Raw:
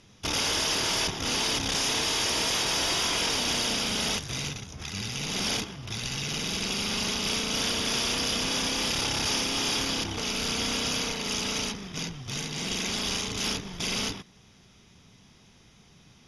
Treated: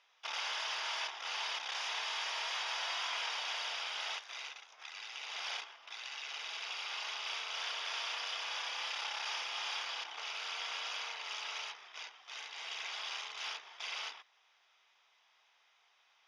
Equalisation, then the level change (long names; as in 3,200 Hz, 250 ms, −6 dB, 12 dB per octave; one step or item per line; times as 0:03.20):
high-pass filter 750 Hz 24 dB per octave
low-pass filter 3,300 Hz 12 dB per octave
−6.5 dB